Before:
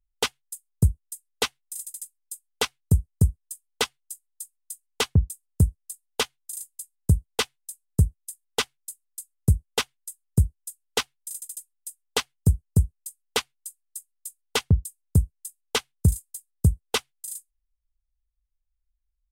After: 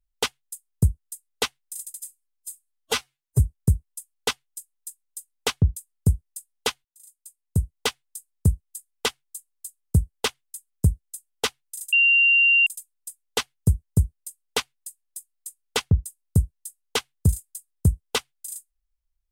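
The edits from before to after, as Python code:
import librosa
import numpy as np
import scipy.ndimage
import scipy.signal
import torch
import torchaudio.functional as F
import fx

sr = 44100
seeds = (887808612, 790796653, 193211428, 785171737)

y = fx.edit(x, sr, fx.stretch_span(start_s=2.0, length_s=0.93, factor=1.5),
    fx.fade_in_span(start_s=6.38, length_s=1.03),
    fx.insert_tone(at_s=11.46, length_s=0.74, hz=2770.0, db=-14.0), tone=tone)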